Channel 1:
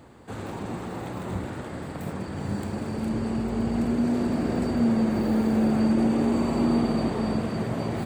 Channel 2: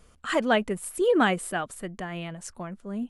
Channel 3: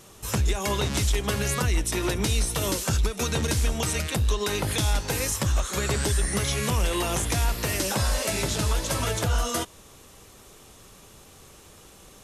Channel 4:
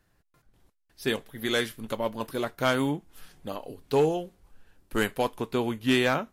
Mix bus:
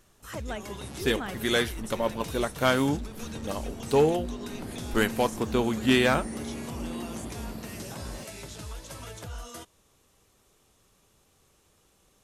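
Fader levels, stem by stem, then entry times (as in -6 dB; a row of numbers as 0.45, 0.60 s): -14.0, -14.5, -15.0, +1.5 dB; 0.20, 0.00, 0.00, 0.00 s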